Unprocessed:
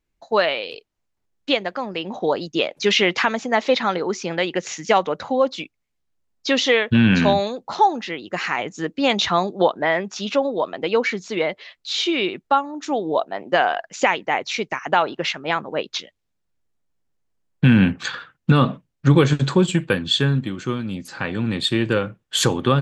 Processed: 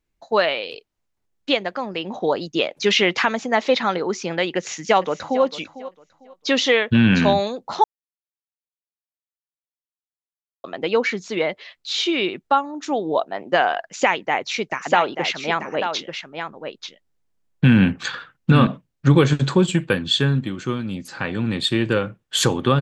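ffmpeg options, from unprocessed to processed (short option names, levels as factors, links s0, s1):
-filter_complex "[0:a]asplit=2[s0][s1];[s1]afade=t=in:st=4.56:d=0.01,afade=t=out:st=5.43:d=0.01,aecho=0:1:450|900|1350:0.16788|0.0419701|0.0104925[s2];[s0][s2]amix=inputs=2:normalize=0,asettb=1/sr,asplit=3[s3][s4][s5];[s3]atrim=end=13.814[s6];[s4]atrim=start=13.81:end=18.67,asetpts=PTS-STARTPTS,afade=t=in:d=0.004:c=qsin,afade=t=out:st=4.856:d=0.004:c=qsin,aecho=1:1:888:0.422,atrim=end_sample=214326[s7];[s5]atrim=start=18.666[s8];[s6][s7]acrossfade=d=0.004:c1=hsin:c2=qsin[s9];[s9][s8]acrossfade=d=0.004:c1=qsin:c2=hsin,asplit=3[s10][s11][s12];[s10]atrim=end=7.84,asetpts=PTS-STARTPTS,afade=t=out:st=7.836:d=0.004:c=hsin[s13];[s11]atrim=start=7.84:end=10.64,asetpts=PTS-STARTPTS,volume=0[s14];[s12]atrim=start=10.64,asetpts=PTS-STARTPTS,afade=t=in:d=0.004:c=hsin[s15];[s13][s14][s15]concat=n=3:v=0:a=1"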